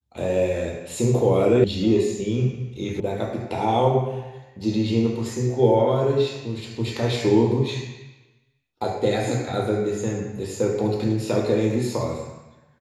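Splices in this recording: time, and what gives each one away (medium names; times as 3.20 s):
1.64 s: sound stops dead
3.00 s: sound stops dead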